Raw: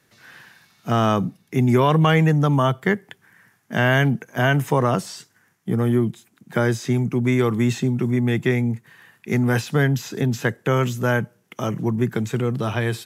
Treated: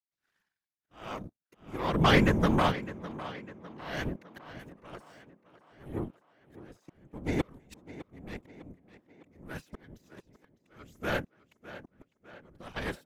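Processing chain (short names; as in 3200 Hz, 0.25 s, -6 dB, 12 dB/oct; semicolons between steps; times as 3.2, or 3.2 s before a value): 7.41–7.98 negative-ratio compressor -31 dBFS, ratio -1; auto swell 0.561 s; power-law curve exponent 2; whisperiser; on a send: tape echo 0.605 s, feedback 54%, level -14 dB, low-pass 5900 Hz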